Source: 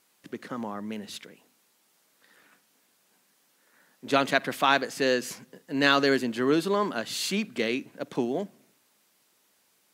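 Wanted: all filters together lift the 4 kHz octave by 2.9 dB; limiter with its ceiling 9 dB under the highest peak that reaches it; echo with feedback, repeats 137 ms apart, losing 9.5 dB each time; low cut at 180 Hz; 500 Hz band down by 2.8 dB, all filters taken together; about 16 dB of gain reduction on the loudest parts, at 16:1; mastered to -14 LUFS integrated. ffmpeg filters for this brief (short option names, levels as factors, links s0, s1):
-af "highpass=180,equalizer=f=500:t=o:g=-3.5,equalizer=f=4000:t=o:g=3.5,acompressor=threshold=0.0251:ratio=16,alimiter=level_in=1.78:limit=0.0631:level=0:latency=1,volume=0.562,aecho=1:1:137|274|411|548:0.335|0.111|0.0365|0.012,volume=18.8"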